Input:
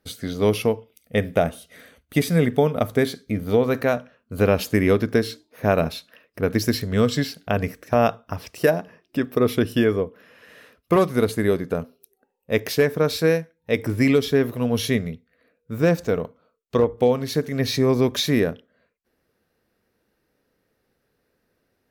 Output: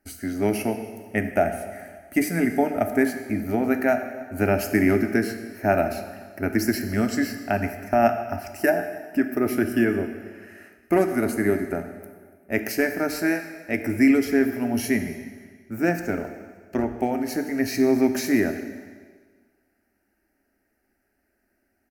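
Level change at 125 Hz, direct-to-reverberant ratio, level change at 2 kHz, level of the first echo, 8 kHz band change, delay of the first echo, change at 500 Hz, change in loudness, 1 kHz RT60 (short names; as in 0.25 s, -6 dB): -8.0 dB, 7.0 dB, +1.5 dB, -23.5 dB, -0.5 dB, 0.286 s, -4.0 dB, -2.0 dB, 1.6 s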